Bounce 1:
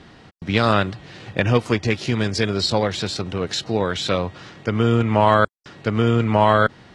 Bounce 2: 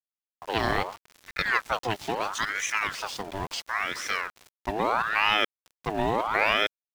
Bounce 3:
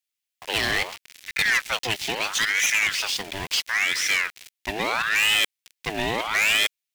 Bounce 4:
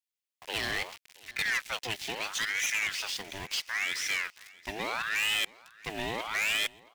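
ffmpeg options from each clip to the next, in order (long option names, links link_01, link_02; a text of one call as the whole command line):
ffmpeg -i in.wav -af "aeval=exprs='val(0)*gte(abs(val(0)),0.0251)':channel_layout=same,aeval=exprs='val(0)*sin(2*PI*1200*n/s+1200*0.6/0.75*sin(2*PI*0.75*n/s))':channel_layout=same,volume=-5.5dB" out.wav
ffmpeg -i in.wav -af "highshelf=frequency=1600:width_type=q:width=1.5:gain=10.5,asoftclip=type=hard:threshold=-17dB" out.wav
ffmpeg -i in.wav -af "aecho=1:1:674|1348|2022:0.0708|0.0297|0.0125,volume=-8.5dB" out.wav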